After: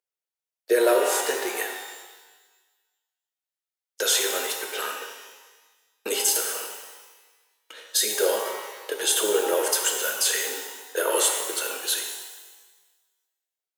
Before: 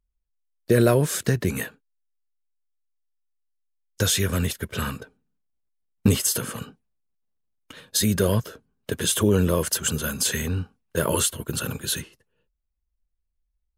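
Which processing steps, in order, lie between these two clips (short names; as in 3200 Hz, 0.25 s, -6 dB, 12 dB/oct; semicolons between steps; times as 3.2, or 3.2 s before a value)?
steep high-pass 390 Hz 36 dB/oct; bell 1100 Hz -7 dB 0.22 oct; shimmer reverb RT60 1.3 s, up +12 st, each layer -8 dB, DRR 2 dB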